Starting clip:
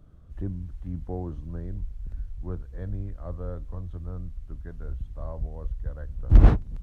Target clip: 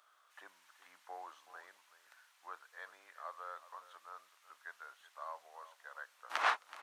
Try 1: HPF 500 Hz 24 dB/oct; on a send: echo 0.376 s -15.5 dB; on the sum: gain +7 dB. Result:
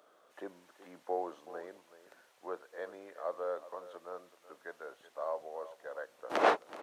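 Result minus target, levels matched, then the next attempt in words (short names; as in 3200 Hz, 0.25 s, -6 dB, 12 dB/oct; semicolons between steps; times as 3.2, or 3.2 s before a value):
500 Hz band +12.5 dB
HPF 1000 Hz 24 dB/oct; on a send: echo 0.376 s -15.5 dB; on the sum: gain +7 dB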